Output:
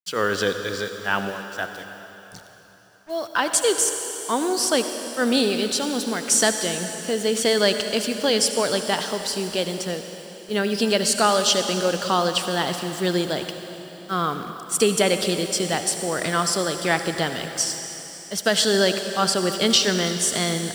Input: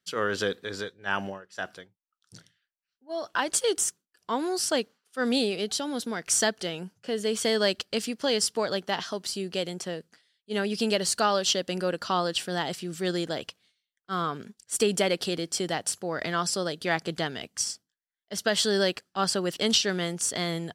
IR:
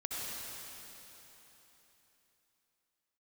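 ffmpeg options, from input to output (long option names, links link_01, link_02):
-filter_complex "[0:a]acrusher=bits=7:mix=0:aa=0.5,asplit=2[link_01][link_02];[1:a]atrim=start_sample=2205,highshelf=frequency=11000:gain=9.5[link_03];[link_02][link_03]afir=irnorm=-1:irlink=0,volume=-7.5dB[link_04];[link_01][link_04]amix=inputs=2:normalize=0,volume=3dB"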